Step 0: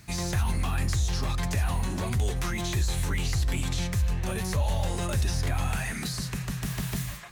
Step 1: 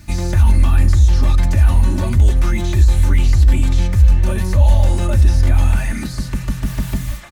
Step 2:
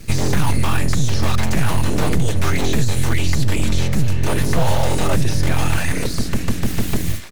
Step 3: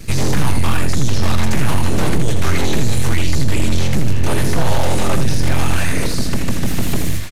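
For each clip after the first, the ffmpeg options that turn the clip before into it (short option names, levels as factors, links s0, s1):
-filter_complex "[0:a]lowshelf=f=260:g=11,aecho=1:1:3.4:0.66,acrossover=split=2400[s0][s1];[s1]alimiter=level_in=2.24:limit=0.0631:level=0:latency=1:release=111,volume=0.447[s2];[s0][s2]amix=inputs=2:normalize=0,volume=1.58"
-filter_complex "[0:a]acrossover=split=310|670|1400[s0][s1][s2][s3];[s0]acompressor=threshold=0.141:ratio=6[s4];[s2]acrusher=bits=5:mix=0:aa=0.000001[s5];[s4][s1][s5][s3]amix=inputs=4:normalize=0,aeval=exprs='abs(val(0))':c=same,volume=1.88"
-af "aeval=exprs='0.668*(cos(1*acos(clip(val(0)/0.668,-1,1)))-cos(1*PI/2))+0.0668*(cos(5*acos(clip(val(0)/0.668,-1,1)))-cos(5*PI/2))':c=same,aecho=1:1:82:0.447,aresample=32000,aresample=44100"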